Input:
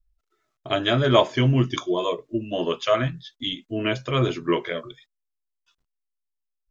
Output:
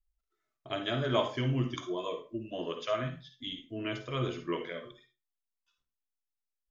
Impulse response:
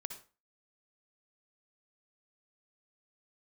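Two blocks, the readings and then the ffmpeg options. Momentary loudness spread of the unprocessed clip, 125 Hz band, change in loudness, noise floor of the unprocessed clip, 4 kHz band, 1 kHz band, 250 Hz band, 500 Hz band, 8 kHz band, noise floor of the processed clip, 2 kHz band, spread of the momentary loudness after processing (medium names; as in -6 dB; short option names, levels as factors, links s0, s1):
11 LU, -11.0 dB, -11.0 dB, -81 dBFS, -11.0 dB, -11.0 dB, -10.5 dB, -11.0 dB, no reading, under -85 dBFS, -11.0 dB, 11 LU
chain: -filter_complex "[1:a]atrim=start_sample=2205,asetrate=52920,aresample=44100[s0];[0:a][s0]afir=irnorm=-1:irlink=0,volume=0.447"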